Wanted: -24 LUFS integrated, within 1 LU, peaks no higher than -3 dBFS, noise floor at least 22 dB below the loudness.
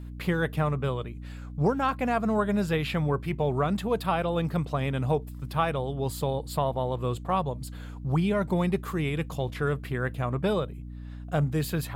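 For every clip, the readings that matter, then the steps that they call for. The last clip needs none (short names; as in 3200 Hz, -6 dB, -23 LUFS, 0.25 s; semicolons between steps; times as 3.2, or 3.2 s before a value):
hum 60 Hz; harmonics up to 300 Hz; hum level -37 dBFS; loudness -28.5 LUFS; peak -13.5 dBFS; loudness target -24.0 LUFS
-> notches 60/120/180/240/300 Hz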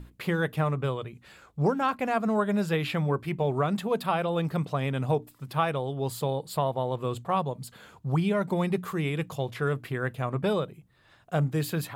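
hum none; loudness -29.0 LUFS; peak -14.0 dBFS; loudness target -24.0 LUFS
-> gain +5 dB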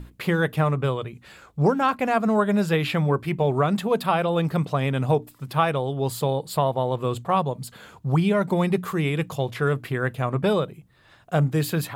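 loudness -24.0 LUFS; peak -9.0 dBFS; noise floor -55 dBFS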